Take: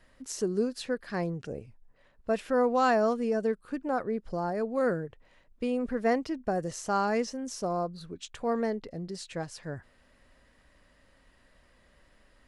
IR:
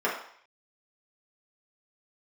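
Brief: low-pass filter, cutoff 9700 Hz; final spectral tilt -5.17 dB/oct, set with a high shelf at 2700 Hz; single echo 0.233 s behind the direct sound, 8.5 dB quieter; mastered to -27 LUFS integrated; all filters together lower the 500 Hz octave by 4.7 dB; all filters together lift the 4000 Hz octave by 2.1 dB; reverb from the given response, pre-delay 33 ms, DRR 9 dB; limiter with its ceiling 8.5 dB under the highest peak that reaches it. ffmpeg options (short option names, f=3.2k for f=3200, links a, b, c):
-filter_complex "[0:a]lowpass=9.7k,equalizer=f=500:t=o:g=-5.5,highshelf=f=2.7k:g=-4,equalizer=f=4k:t=o:g=6.5,alimiter=level_in=0.5dB:limit=-24dB:level=0:latency=1,volume=-0.5dB,aecho=1:1:233:0.376,asplit=2[a][b];[1:a]atrim=start_sample=2205,adelay=33[c];[b][c]afir=irnorm=-1:irlink=0,volume=-22dB[d];[a][d]amix=inputs=2:normalize=0,volume=8dB"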